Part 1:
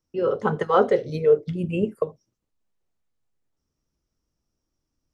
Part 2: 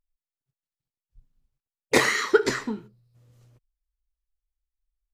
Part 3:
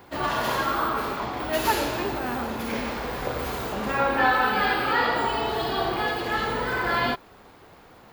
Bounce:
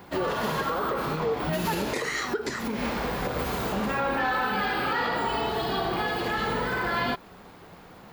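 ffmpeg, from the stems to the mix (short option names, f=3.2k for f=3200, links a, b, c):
-filter_complex "[0:a]volume=1dB[a];[1:a]volume=-1.5dB,asplit=2[b][c];[2:a]equalizer=f=180:t=o:w=0.41:g=8,asoftclip=type=tanh:threshold=-13dB,volume=1.5dB[d];[c]apad=whole_len=358381[e];[d][e]sidechaincompress=threshold=-39dB:ratio=4:attack=12:release=114[f];[a][b]amix=inputs=2:normalize=0,alimiter=limit=-16dB:level=0:latency=1:release=98,volume=0dB[g];[f][g]amix=inputs=2:normalize=0,alimiter=limit=-19dB:level=0:latency=1:release=138"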